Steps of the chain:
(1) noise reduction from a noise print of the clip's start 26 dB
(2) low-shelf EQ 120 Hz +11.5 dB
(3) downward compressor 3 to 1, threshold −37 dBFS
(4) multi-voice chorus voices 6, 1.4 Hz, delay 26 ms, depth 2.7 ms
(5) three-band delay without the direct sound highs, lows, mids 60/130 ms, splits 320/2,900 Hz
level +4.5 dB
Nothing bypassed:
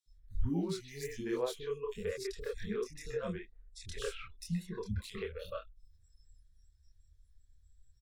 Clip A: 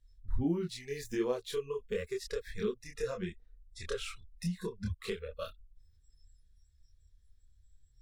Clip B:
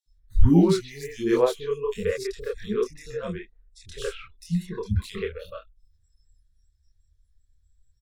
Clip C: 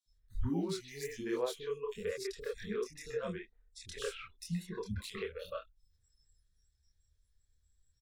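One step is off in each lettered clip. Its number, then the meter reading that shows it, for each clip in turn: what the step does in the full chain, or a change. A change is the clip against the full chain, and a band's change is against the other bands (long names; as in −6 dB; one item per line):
5, echo-to-direct ratio 12.5 dB to none audible
3, average gain reduction 8.5 dB
2, 125 Hz band −3.0 dB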